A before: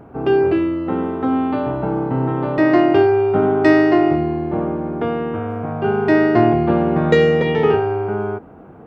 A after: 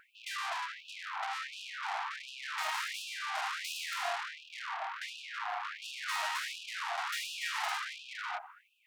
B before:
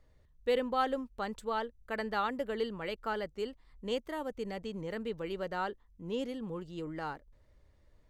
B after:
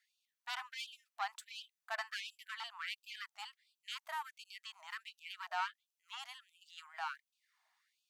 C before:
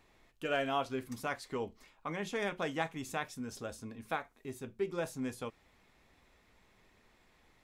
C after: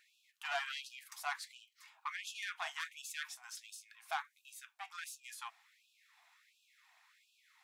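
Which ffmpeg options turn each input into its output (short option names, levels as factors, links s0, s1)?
-af "aeval=exprs='(tanh(35.5*val(0)+0.45)-tanh(0.45))/35.5':c=same,afftfilt=real='re*gte(b*sr/1024,640*pow(2500/640,0.5+0.5*sin(2*PI*1.4*pts/sr)))':imag='im*gte(b*sr/1024,640*pow(2500/640,0.5+0.5*sin(2*PI*1.4*pts/sr)))':win_size=1024:overlap=0.75,volume=1.5"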